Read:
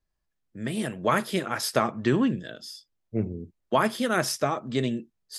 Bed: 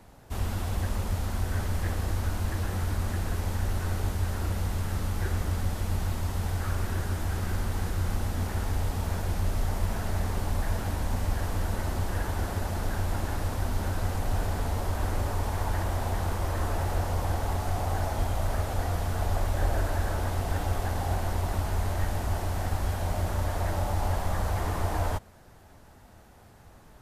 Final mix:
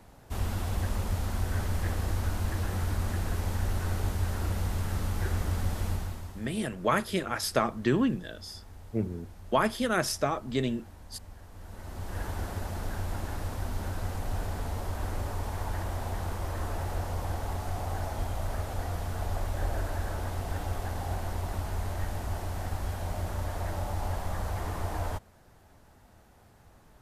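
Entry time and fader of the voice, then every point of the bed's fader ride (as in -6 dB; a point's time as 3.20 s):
5.80 s, -2.5 dB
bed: 5.88 s -1 dB
6.59 s -19.5 dB
11.50 s -19.5 dB
12.22 s -4.5 dB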